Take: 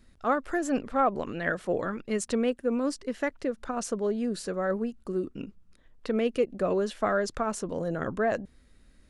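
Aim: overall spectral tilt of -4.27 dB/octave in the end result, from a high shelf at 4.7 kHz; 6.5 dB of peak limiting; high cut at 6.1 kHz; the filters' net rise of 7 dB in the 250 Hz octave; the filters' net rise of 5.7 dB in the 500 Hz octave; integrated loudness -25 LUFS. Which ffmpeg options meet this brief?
-af "lowpass=6100,equalizer=f=250:t=o:g=7,equalizer=f=500:t=o:g=5,highshelf=f=4700:g=-8.5,volume=1.06,alimiter=limit=0.188:level=0:latency=1"

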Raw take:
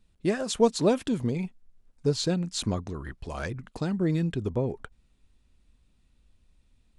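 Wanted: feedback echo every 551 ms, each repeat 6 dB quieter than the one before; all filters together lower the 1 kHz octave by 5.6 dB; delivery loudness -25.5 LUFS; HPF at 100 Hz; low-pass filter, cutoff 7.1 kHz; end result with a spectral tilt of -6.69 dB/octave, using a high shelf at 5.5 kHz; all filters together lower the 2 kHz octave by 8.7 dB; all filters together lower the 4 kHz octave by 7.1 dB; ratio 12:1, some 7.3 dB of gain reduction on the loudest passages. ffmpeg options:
-af "highpass=100,lowpass=7100,equalizer=f=1000:t=o:g=-5.5,equalizer=f=2000:t=o:g=-8,equalizer=f=4000:t=o:g=-3,highshelf=f=5500:g=-6.5,acompressor=threshold=0.0562:ratio=12,aecho=1:1:551|1102|1653|2204|2755|3306:0.501|0.251|0.125|0.0626|0.0313|0.0157,volume=2.37"

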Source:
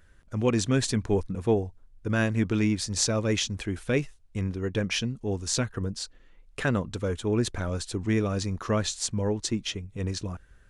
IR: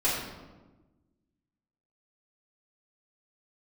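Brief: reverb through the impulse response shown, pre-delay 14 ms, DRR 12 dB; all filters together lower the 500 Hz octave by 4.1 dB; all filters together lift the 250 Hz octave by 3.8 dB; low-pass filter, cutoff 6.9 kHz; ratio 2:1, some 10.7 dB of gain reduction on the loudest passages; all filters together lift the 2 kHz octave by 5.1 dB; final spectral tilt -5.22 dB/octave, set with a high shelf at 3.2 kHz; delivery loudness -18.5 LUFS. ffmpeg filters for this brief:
-filter_complex "[0:a]lowpass=6900,equalizer=f=250:t=o:g=6.5,equalizer=f=500:t=o:g=-8,equalizer=f=2000:t=o:g=9,highshelf=f=3200:g=-5.5,acompressor=threshold=0.0126:ratio=2,asplit=2[s0][s1];[1:a]atrim=start_sample=2205,adelay=14[s2];[s1][s2]afir=irnorm=-1:irlink=0,volume=0.0668[s3];[s0][s3]amix=inputs=2:normalize=0,volume=7.08"

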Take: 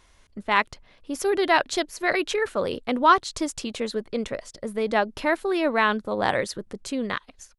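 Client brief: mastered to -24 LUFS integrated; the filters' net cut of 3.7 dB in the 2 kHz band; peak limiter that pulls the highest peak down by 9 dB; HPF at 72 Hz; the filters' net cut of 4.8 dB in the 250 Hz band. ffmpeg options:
-af "highpass=72,equalizer=f=250:t=o:g=-6.5,equalizer=f=2000:t=o:g=-4.5,volume=1.88,alimiter=limit=0.299:level=0:latency=1"

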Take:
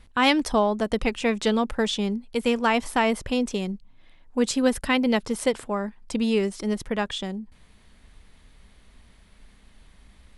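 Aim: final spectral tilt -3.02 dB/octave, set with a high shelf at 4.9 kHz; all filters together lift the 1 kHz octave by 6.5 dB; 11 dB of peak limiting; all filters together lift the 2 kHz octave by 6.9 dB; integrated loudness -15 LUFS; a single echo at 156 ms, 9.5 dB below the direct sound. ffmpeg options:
-af "equalizer=f=1000:t=o:g=6.5,equalizer=f=2000:t=o:g=7.5,highshelf=f=4900:g=-6,alimiter=limit=0.2:level=0:latency=1,aecho=1:1:156:0.335,volume=3.16"

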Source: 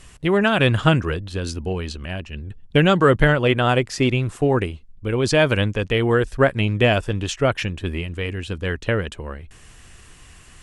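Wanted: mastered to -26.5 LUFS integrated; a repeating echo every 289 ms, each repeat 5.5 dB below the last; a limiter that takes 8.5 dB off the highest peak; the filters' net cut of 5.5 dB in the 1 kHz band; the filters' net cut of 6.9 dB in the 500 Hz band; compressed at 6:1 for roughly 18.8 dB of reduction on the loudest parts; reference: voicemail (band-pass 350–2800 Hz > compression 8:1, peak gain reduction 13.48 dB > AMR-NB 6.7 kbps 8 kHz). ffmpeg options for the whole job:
-af "equalizer=f=500:t=o:g=-5.5,equalizer=f=1000:t=o:g=-6,acompressor=threshold=0.02:ratio=6,alimiter=level_in=2.24:limit=0.0631:level=0:latency=1,volume=0.447,highpass=350,lowpass=2800,aecho=1:1:289|578|867|1156|1445|1734|2023:0.531|0.281|0.149|0.079|0.0419|0.0222|0.0118,acompressor=threshold=0.00316:ratio=8,volume=29.9" -ar 8000 -c:a libopencore_amrnb -b:a 6700

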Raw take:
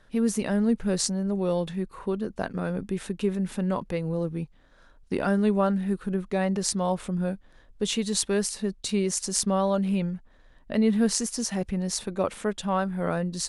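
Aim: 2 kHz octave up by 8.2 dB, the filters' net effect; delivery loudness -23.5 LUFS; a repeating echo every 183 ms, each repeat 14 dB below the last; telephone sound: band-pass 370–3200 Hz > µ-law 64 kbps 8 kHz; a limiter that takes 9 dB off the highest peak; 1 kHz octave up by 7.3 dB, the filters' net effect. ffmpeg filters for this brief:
-af "equalizer=f=1000:t=o:g=7.5,equalizer=f=2000:t=o:g=8.5,alimiter=limit=0.2:level=0:latency=1,highpass=370,lowpass=3200,aecho=1:1:183|366:0.2|0.0399,volume=2.11" -ar 8000 -c:a pcm_mulaw

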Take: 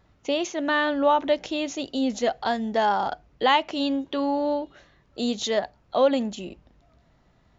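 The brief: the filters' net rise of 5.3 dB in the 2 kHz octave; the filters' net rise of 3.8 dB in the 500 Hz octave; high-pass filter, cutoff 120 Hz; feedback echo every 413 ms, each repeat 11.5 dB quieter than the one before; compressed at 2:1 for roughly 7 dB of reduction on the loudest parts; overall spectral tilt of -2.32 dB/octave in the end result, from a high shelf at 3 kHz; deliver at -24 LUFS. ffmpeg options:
-af "highpass=120,equalizer=f=500:t=o:g=4,equalizer=f=2000:t=o:g=3.5,highshelf=f=3000:g=8,acompressor=threshold=0.0631:ratio=2,aecho=1:1:413|826|1239:0.266|0.0718|0.0194,volume=1.26"

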